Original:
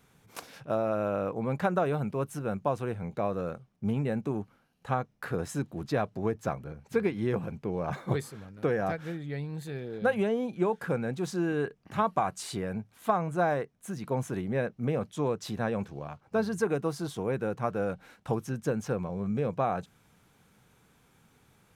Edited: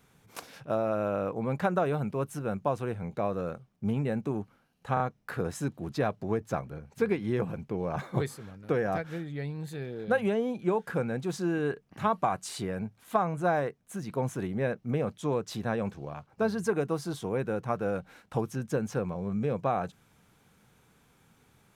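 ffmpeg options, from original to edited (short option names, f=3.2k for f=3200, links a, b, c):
-filter_complex "[0:a]asplit=3[a][b][c];[a]atrim=end=4.972[d];[b]atrim=start=4.938:end=4.972[e];[c]atrim=start=4.938[f];[d][e]acrossfade=d=0.004:c1=hsin:c2=hsin[g];[g][f]acrossfade=d=0.004:c1=hsin:c2=hsin"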